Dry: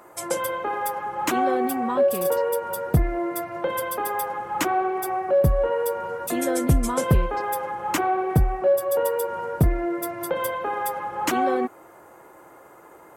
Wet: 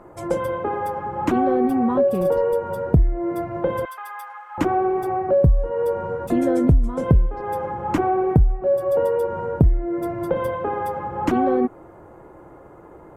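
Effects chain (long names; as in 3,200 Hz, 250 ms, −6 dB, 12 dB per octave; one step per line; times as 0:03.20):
0:03.85–0:04.58: high-pass filter 1,100 Hz 24 dB per octave
spectral tilt −4.5 dB per octave
downward compressor 5 to 1, threshold −14 dBFS, peak gain reduction 16.5 dB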